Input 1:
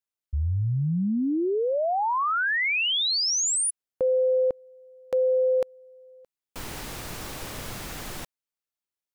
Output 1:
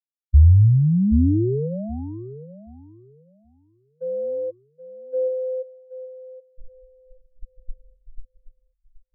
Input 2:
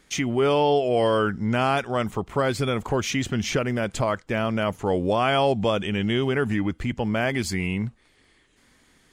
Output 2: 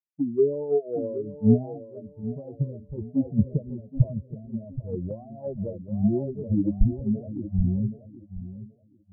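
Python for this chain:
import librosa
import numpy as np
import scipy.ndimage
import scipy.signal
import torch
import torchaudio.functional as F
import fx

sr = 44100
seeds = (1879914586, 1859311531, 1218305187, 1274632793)

y = fx.bin_expand(x, sr, power=3.0)
y = scipy.ndimage.gaussian_filter1d(y, 21.0, mode='constant')
y = fx.low_shelf(y, sr, hz=77.0, db=6.0)
y = fx.echo_feedback(y, sr, ms=776, feedback_pct=45, wet_db=-7)
y = fx.band_widen(y, sr, depth_pct=100)
y = y * librosa.db_to_amplitude(7.0)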